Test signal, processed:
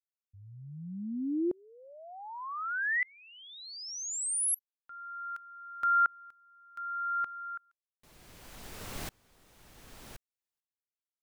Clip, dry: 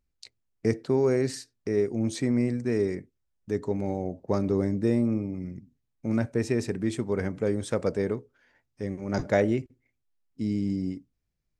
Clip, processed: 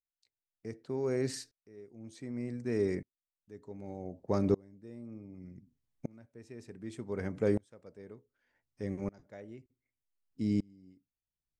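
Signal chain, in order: sawtooth tremolo in dB swelling 0.66 Hz, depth 32 dB

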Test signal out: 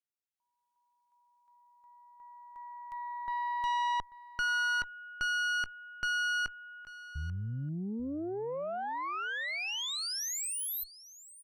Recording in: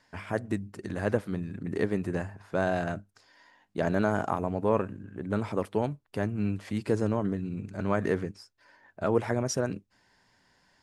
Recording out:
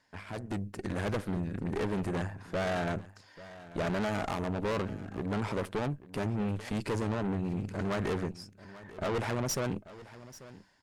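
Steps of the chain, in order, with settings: valve stage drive 35 dB, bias 0.75; level rider gain up to 7.5 dB; delay 839 ms -17.5 dB; trim -1 dB

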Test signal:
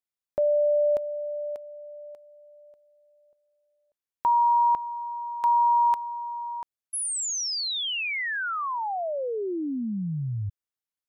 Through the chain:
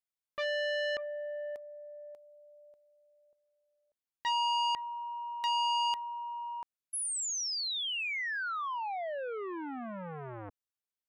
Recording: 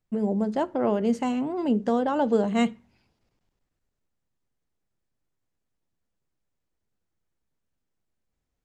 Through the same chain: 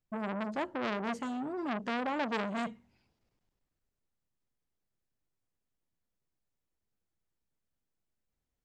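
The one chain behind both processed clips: transformer saturation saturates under 1.9 kHz; trim -5.5 dB

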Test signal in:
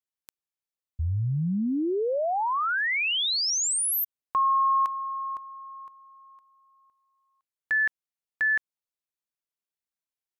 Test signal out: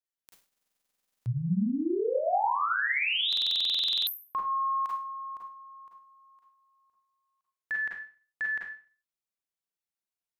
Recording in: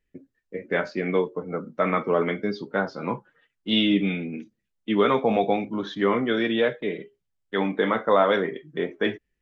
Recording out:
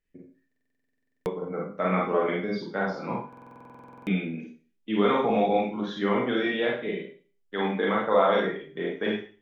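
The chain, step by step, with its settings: dynamic bell 790 Hz, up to +5 dB, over -46 dBFS, Q 7.7; Schroeder reverb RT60 0.4 s, combs from 33 ms, DRR -2.5 dB; buffer glitch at 0.47/3.28 s, samples 2048, times 16; trim -6.5 dB

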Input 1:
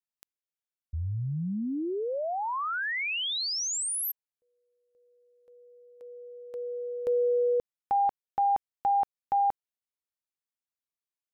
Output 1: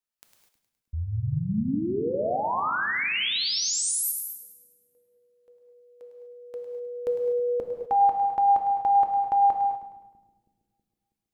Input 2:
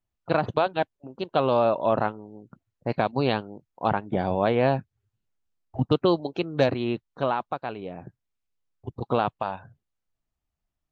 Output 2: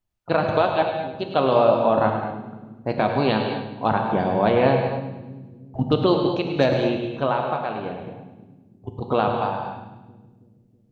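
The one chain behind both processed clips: two-band feedback delay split 300 Hz, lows 323 ms, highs 104 ms, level -10.5 dB; gated-style reverb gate 270 ms flat, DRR 3 dB; trim +2 dB

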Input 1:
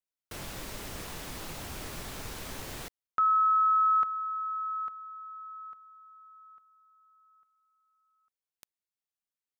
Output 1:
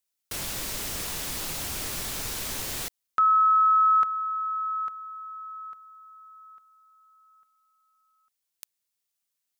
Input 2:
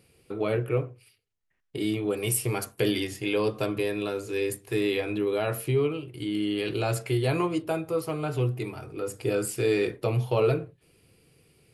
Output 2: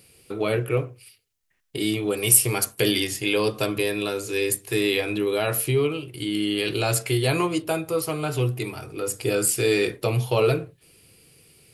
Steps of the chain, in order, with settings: treble shelf 2.8 kHz +10.5 dB; trim +2.5 dB

